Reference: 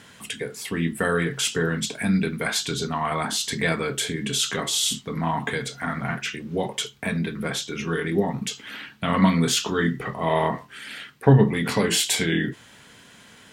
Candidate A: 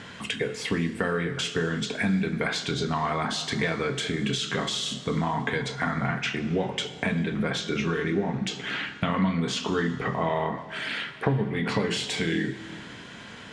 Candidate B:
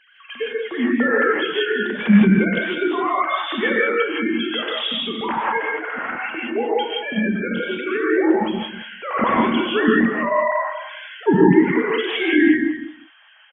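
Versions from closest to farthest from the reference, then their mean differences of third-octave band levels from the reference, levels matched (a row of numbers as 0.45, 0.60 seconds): A, B; 6.5, 13.5 decibels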